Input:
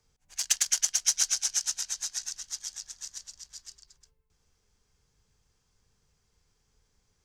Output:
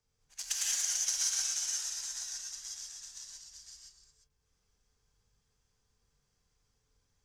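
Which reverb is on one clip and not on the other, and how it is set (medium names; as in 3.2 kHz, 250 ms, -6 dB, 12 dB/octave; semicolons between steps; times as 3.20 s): gated-style reverb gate 210 ms rising, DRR -4 dB; trim -10 dB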